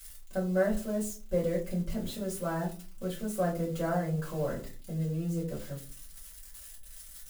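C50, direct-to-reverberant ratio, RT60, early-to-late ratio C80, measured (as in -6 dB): 10.5 dB, -5.5 dB, 0.40 s, 16.0 dB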